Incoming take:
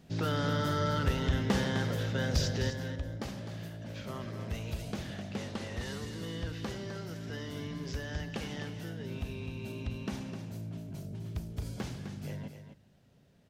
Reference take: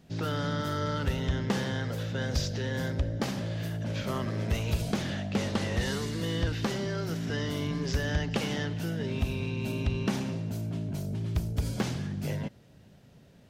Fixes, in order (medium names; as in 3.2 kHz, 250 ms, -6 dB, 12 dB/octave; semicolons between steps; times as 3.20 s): clip repair -19.5 dBFS; inverse comb 256 ms -9 dB; gain correction +8.5 dB, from 2.70 s